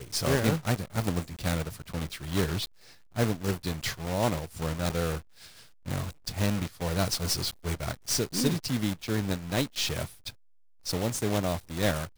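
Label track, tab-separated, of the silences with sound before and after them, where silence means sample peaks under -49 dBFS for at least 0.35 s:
10.330000	10.850000	silence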